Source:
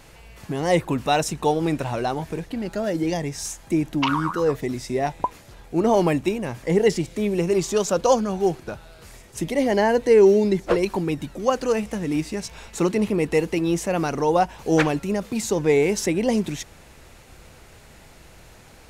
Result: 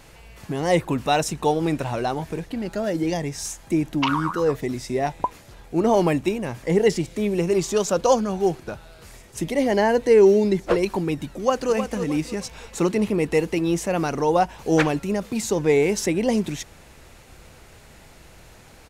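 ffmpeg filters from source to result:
ffmpeg -i in.wav -filter_complex "[0:a]asplit=2[link_01][link_02];[link_02]afade=type=in:start_time=11.28:duration=0.01,afade=type=out:start_time=11.73:duration=0.01,aecho=0:1:310|620|930|1240:0.375837|0.131543|0.0460401|0.016114[link_03];[link_01][link_03]amix=inputs=2:normalize=0" out.wav

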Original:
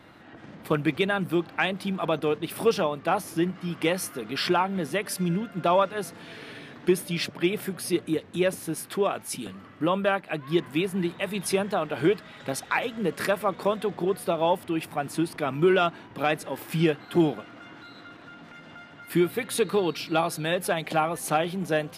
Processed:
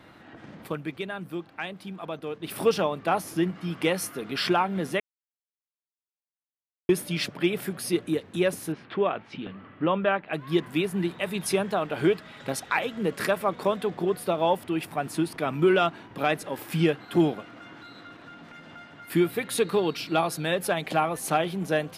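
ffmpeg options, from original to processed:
ffmpeg -i in.wav -filter_complex "[0:a]asettb=1/sr,asplit=3[link_01][link_02][link_03];[link_01]atrim=end=8.724[link_04];[link_02]atrim=start=8.72:end=10.33,asetpts=PTS-STARTPTS,afade=type=in:duration=0.004:curve=qsin,afade=type=out:start_time=1.606:duration=0.004:curve=qsin,lowpass=frequency=3300:width=0.5412,lowpass=frequency=3300:width=1.3066[link_05];[link_03]atrim=start=10.326[link_06];[link_04][link_05]acrossfade=duration=0.004:curve1=hsin:curve2=qsin[link_07];[link_07][link_06]acrossfade=duration=0.004:curve1=qsin:curve2=hsin,asplit=5[link_08][link_09][link_10][link_11][link_12];[link_08]atrim=end=1.1,asetpts=PTS-STARTPTS,afade=type=out:start_time=0.64:duration=0.46:curve=exp:silence=0.354813[link_13];[link_09]atrim=start=1.1:end=2.02,asetpts=PTS-STARTPTS,volume=-9dB[link_14];[link_10]atrim=start=2.02:end=5,asetpts=PTS-STARTPTS,afade=type=in:duration=0.46:curve=exp:silence=0.354813,afade=type=out:start_time=2.976:duration=0.004:curve=hsin[link_15];[link_11]atrim=start=5:end=6.89,asetpts=PTS-STARTPTS,volume=0[link_16];[link_12]atrim=start=6.89,asetpts=PTS-STARTPTS,afade=type=in:duration=0.004:curve=hsin[link_17];[link_13][link_14][link_15][link_16][link_17]concat=n=5:v=0:a=1" out.wav

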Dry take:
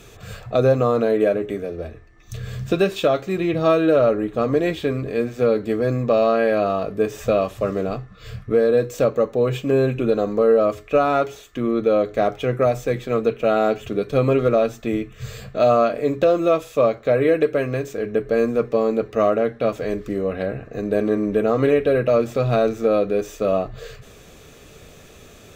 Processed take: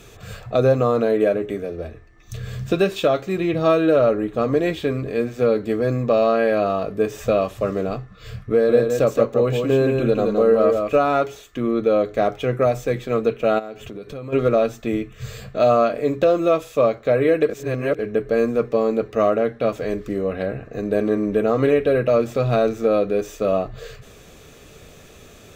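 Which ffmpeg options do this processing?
ffmpeg -i in.wav -filter_complex "[0:a]asettb=1/sr,asplit=3[link_01][link_02][link_03];[link_01]atrim=end=8.524[link_04];[link_02]atrim=start=8.52:end=11.04,asetpts=PTS-STARTPTS,afade=type=in:duration=0.004:curve=qsin,afade=type=out:start_time=2.516:duration=0.004:curve=qsin,aecho=1:1:169:0.596,atrim=end_sample=111132[link_05];[link_03]atrim=start=11.036[link_06];[link_04][link_05]acrossfade=duration=0.004:curve1=hsin:curve2=qsin[link_07];[link_07][link_06]acrossfade=duration=0.004:curve1=qsin:curve2=hsin,asplit=3[link_08][link_09][link_10];[link_08]afade=type=out:start_time=13.58:duration=0.02[link_11];[link_09]acompressor=threshold=-31dB:ratio=5:attack=3.2:release=140:knee=1:detection=peak,afade=type=in:start_time=13.58:duration=0.02,afade=type=out:start_time=14.32:duration=0.02[link_12];[link_10]afade=type=in:start_time=14.32:duration=0.02[link_13];[link_11][link_12][link_13]amix=inputs=3:normalize=0,asplit=3[link_14][link_15][link_16];[link_14]atrim=end=17.492[link_17];[link_15]atrim=start=17.488:end=17.992,asetpts=PTS-STARTPTS,areverse[link_18];[link_16]atrim=start=17.988[link_19];[link_17][link_18]acrossfade=duration=0.004:curve1=hsin:curve2=hsin[link_20];[link_20][link_19]acrossfade=duration=0.004:curve1=hsin:curve2=hsin" out.wav

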